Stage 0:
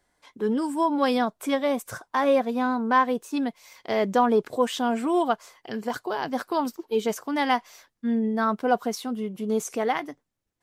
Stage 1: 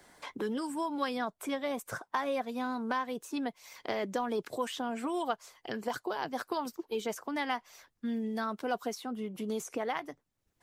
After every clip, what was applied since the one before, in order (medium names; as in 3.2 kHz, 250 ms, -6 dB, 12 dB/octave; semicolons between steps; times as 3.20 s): harmonic-percussive split harmonic -7 dB; three bands compressed up and down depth 70%; trim -5 dB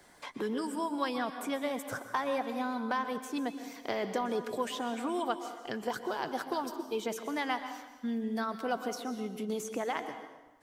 plate-style reverb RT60 1.2 s, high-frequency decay 0.8×, pre-delay 110 ms, DRR 8.5 dB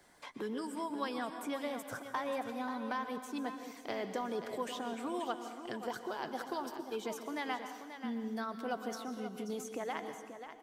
delay 534 ms -10 dB; trim -5 dB